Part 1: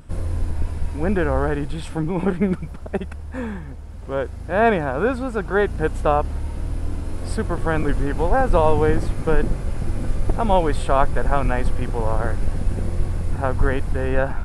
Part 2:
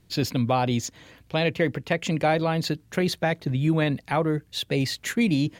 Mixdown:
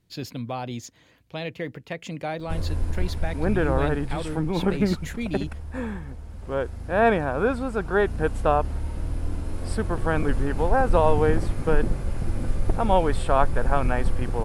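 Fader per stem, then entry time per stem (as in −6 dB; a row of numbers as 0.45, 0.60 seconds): −2.5, −8.5 decibels; 2.40, 0.00 seconds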